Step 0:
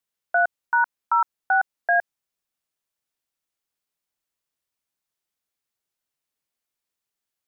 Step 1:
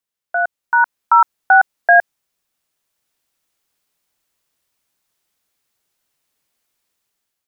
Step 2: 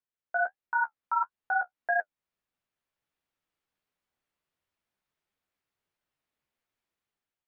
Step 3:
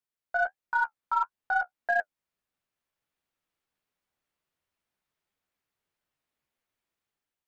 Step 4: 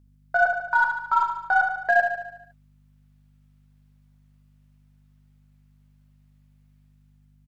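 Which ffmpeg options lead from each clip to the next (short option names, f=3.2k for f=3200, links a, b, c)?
-af "dynaudnorm=f=310:g=5:m=12.5dB"
-af "bass=f=250:g=2,treble=f=4k:g=-13,alimiter=limit=-10.5dB:level=0:latency=1:release=324,flanger=delay=9.7:depth=6.4:regen=-30:speed=1.5:shape=triangular,volume=-5.5dB"
-af "aeval=exprs='0.15*(cos(1*acos(clip(val(0)/0.15,-1,1)))-cos(1*PI/2))+0.00531*(cos(3*acos(clip(val(0)/0.15,-1,1)))-cos(3*PI/2))+0.0015*(cos(8*acos(clip(val(0)/0.15,-1,1)))-cos(8*PI/2))':c=same,volume=1.5dB"
-filter_complex "[0:a]aeval=exprs='val(0)+0.000794*(sin(2*PI*50*n/s)+sin(2*PI*2*50*n/s)/2+sin(2*PI*3*50*n/s)/3+sin(2*PI*4*50*n/s)/4+sin(2*PI*5*50*n/s)/5)':c=same,asplit=2[a][b];[b]aecho=0:1:73|146|219|292|365|438|511:0.473|0.265|0.148|0.0831|0.0465|0.0261|0.0146[c];[a][c]amix=inputs=2:normalize=0,volume=6dB"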